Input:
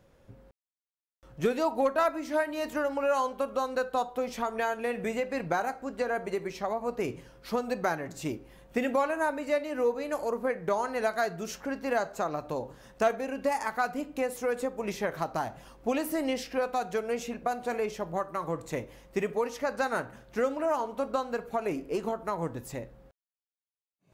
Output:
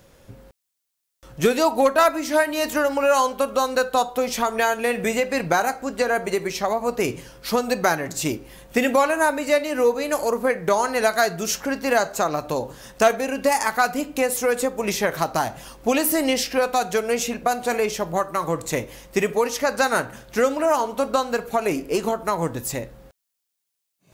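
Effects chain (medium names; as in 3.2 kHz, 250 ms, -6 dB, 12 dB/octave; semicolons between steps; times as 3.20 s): treble shelf 3.1 kHz +10.5 dB; trim +8 dB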